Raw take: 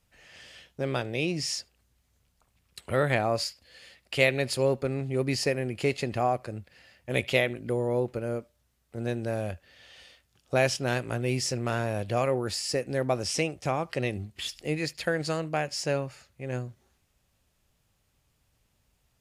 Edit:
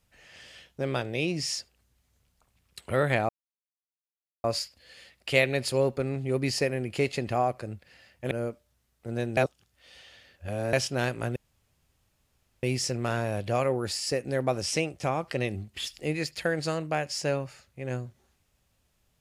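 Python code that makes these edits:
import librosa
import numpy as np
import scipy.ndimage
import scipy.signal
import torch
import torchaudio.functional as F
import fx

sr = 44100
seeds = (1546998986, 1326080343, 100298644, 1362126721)

y = fx.edit(x, sr, fx.insert_silence(at_s=3.29, length_s=1.15),
    fx.cut(start_s=7.16, length_s=1.04),
    fx.reverse_span(start_s=9.26, length_s=1.36),
    fx.insert_room_tone(at_s=11.25, length_s=1.27), tone=tone)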